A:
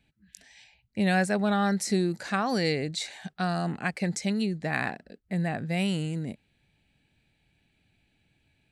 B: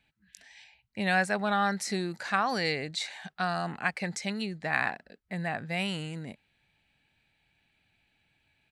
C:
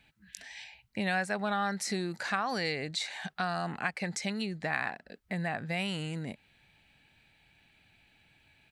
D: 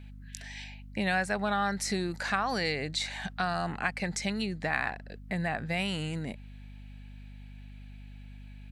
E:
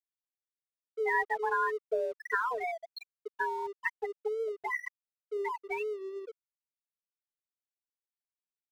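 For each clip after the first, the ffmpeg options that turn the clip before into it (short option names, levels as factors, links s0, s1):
-af "firequalizer=gain_entry='entry(330,0);entry(920,10);entry(7500,3)':delay=0.05:min_phase=1,volume=0.447"
-af "acompressor=threshold=0.00631:ratio=2,volume=2.24"
-af "aeval=exprs='val(0)+0.00447*(sin(2*PI*50*n/s)+sin(2*PI*2*50*n/s)/2+sin(2*PI*3*50*n/s)/3+sin(2*PI*4*50*n/s)/4+sin(2*PI*5*50*n/s)/5)':c=same,volume=1.26"
-af "afftfilt=real='re*gte(hypot(re,im),0.158)':imag='im*gte(hypot(re,im),0.158)':win_size=1024:overlap=0.75,highpass=f=160:t=q:w=0.5412,highpass=f=160:t=q:w=1.307,lowpass=f=3500:t=q:w=0.5176,lowpass=f=3500:t=q:w=0.7071,lowpass=f=3500:t=q:w=1.932,afreqshift=230,aeval=exprs='sgn(val(0))*max(abs(val(0))-0.00168,0)':c=same,volume=1.26"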